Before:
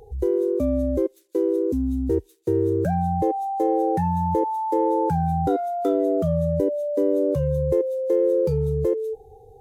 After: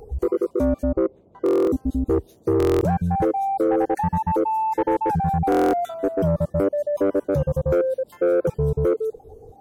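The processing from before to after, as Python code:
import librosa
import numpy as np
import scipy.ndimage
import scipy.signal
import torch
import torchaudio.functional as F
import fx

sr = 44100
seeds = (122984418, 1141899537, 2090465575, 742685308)

y = fx.spec_dropout(x, sr, seeds[0], share_pct=37)
y = fx.dmg_noise_band(y, sr, seeds[1], low_hz=49.0, high_hz=590.0, level_db=-60.0)
y = fx.lowpass(y, sr, hz=1300.0, slope=12, at=(0.83, 1.44))
y = 10.0 ** (-17.5 / 20.0) * np.tanh(y / 10.0 ** (-17.5 / 20.0))
y = fx.buffer_glitch(y, sr, at_s=(1.44, 2.58, 5.5), block=1024, repeats=9)
y = F.gain(torch.from_numpy(y), 4.5).numpy()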